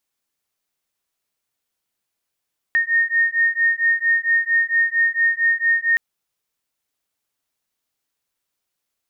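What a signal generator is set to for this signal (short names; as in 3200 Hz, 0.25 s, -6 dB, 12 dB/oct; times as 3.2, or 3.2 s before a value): beating tones 1840 Hz, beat 4.4 Hz, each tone -18.5 dBFS 3.22 s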